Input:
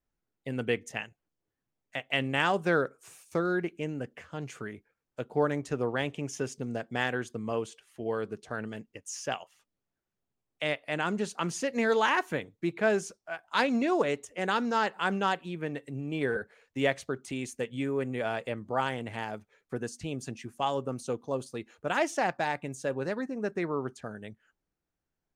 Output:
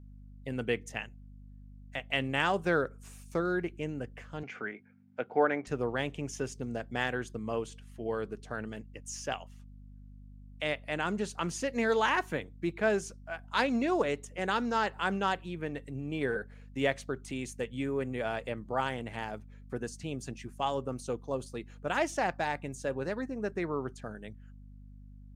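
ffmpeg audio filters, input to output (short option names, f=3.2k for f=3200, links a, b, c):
-filter_complex "[0:a]aeval=exprs='val(0)+0.00447*(sin(2*PI*50*n/s)+sin(2*PI*2*50*n/s)/2+sin(2*PI*3*50*n/s)/3+sin(2*PI*4*50*n/s)/4+sin(2*PI*5*50*n/s)/5)':c=same,asettb=1/sr,asplit=3[a][b][c];[a]atrim=end=4.434[d];[b]atrim=start=4.43:end=5.67,asetpts=PTS-STARTPTS,afade=t=in:d=0.004:c=qsin,afade=t=out:st=1.236:d=0.004:c=qsin,highpass=f=140:w=0.5412,highpass=f=140:w=1.3066,equalizer=f=150:t=q:w=4:g=-9,equalizer=f=500:t=q:w=4:g=3,equalizer=f=760:t=q:w=4:g=8,equalizer=f=1.5k:t=q:w=4:g=8,equalizer=f=2.2k:t=q:w=4:g=10,equalizer=f=4.1k:t=q:w=4:g=-7,lowpass=f=4.8k:w=0.5412,lowpass=f=4.8k:w=1.3066[e];[c]atrim=start=5.666[f];[d][e]acrossfade=d=0.004:c1=hsin:c2=qsin[g];[g][f]acrossfade=d=0.004:c1=qsin:c2=hsin,volume=-2dB"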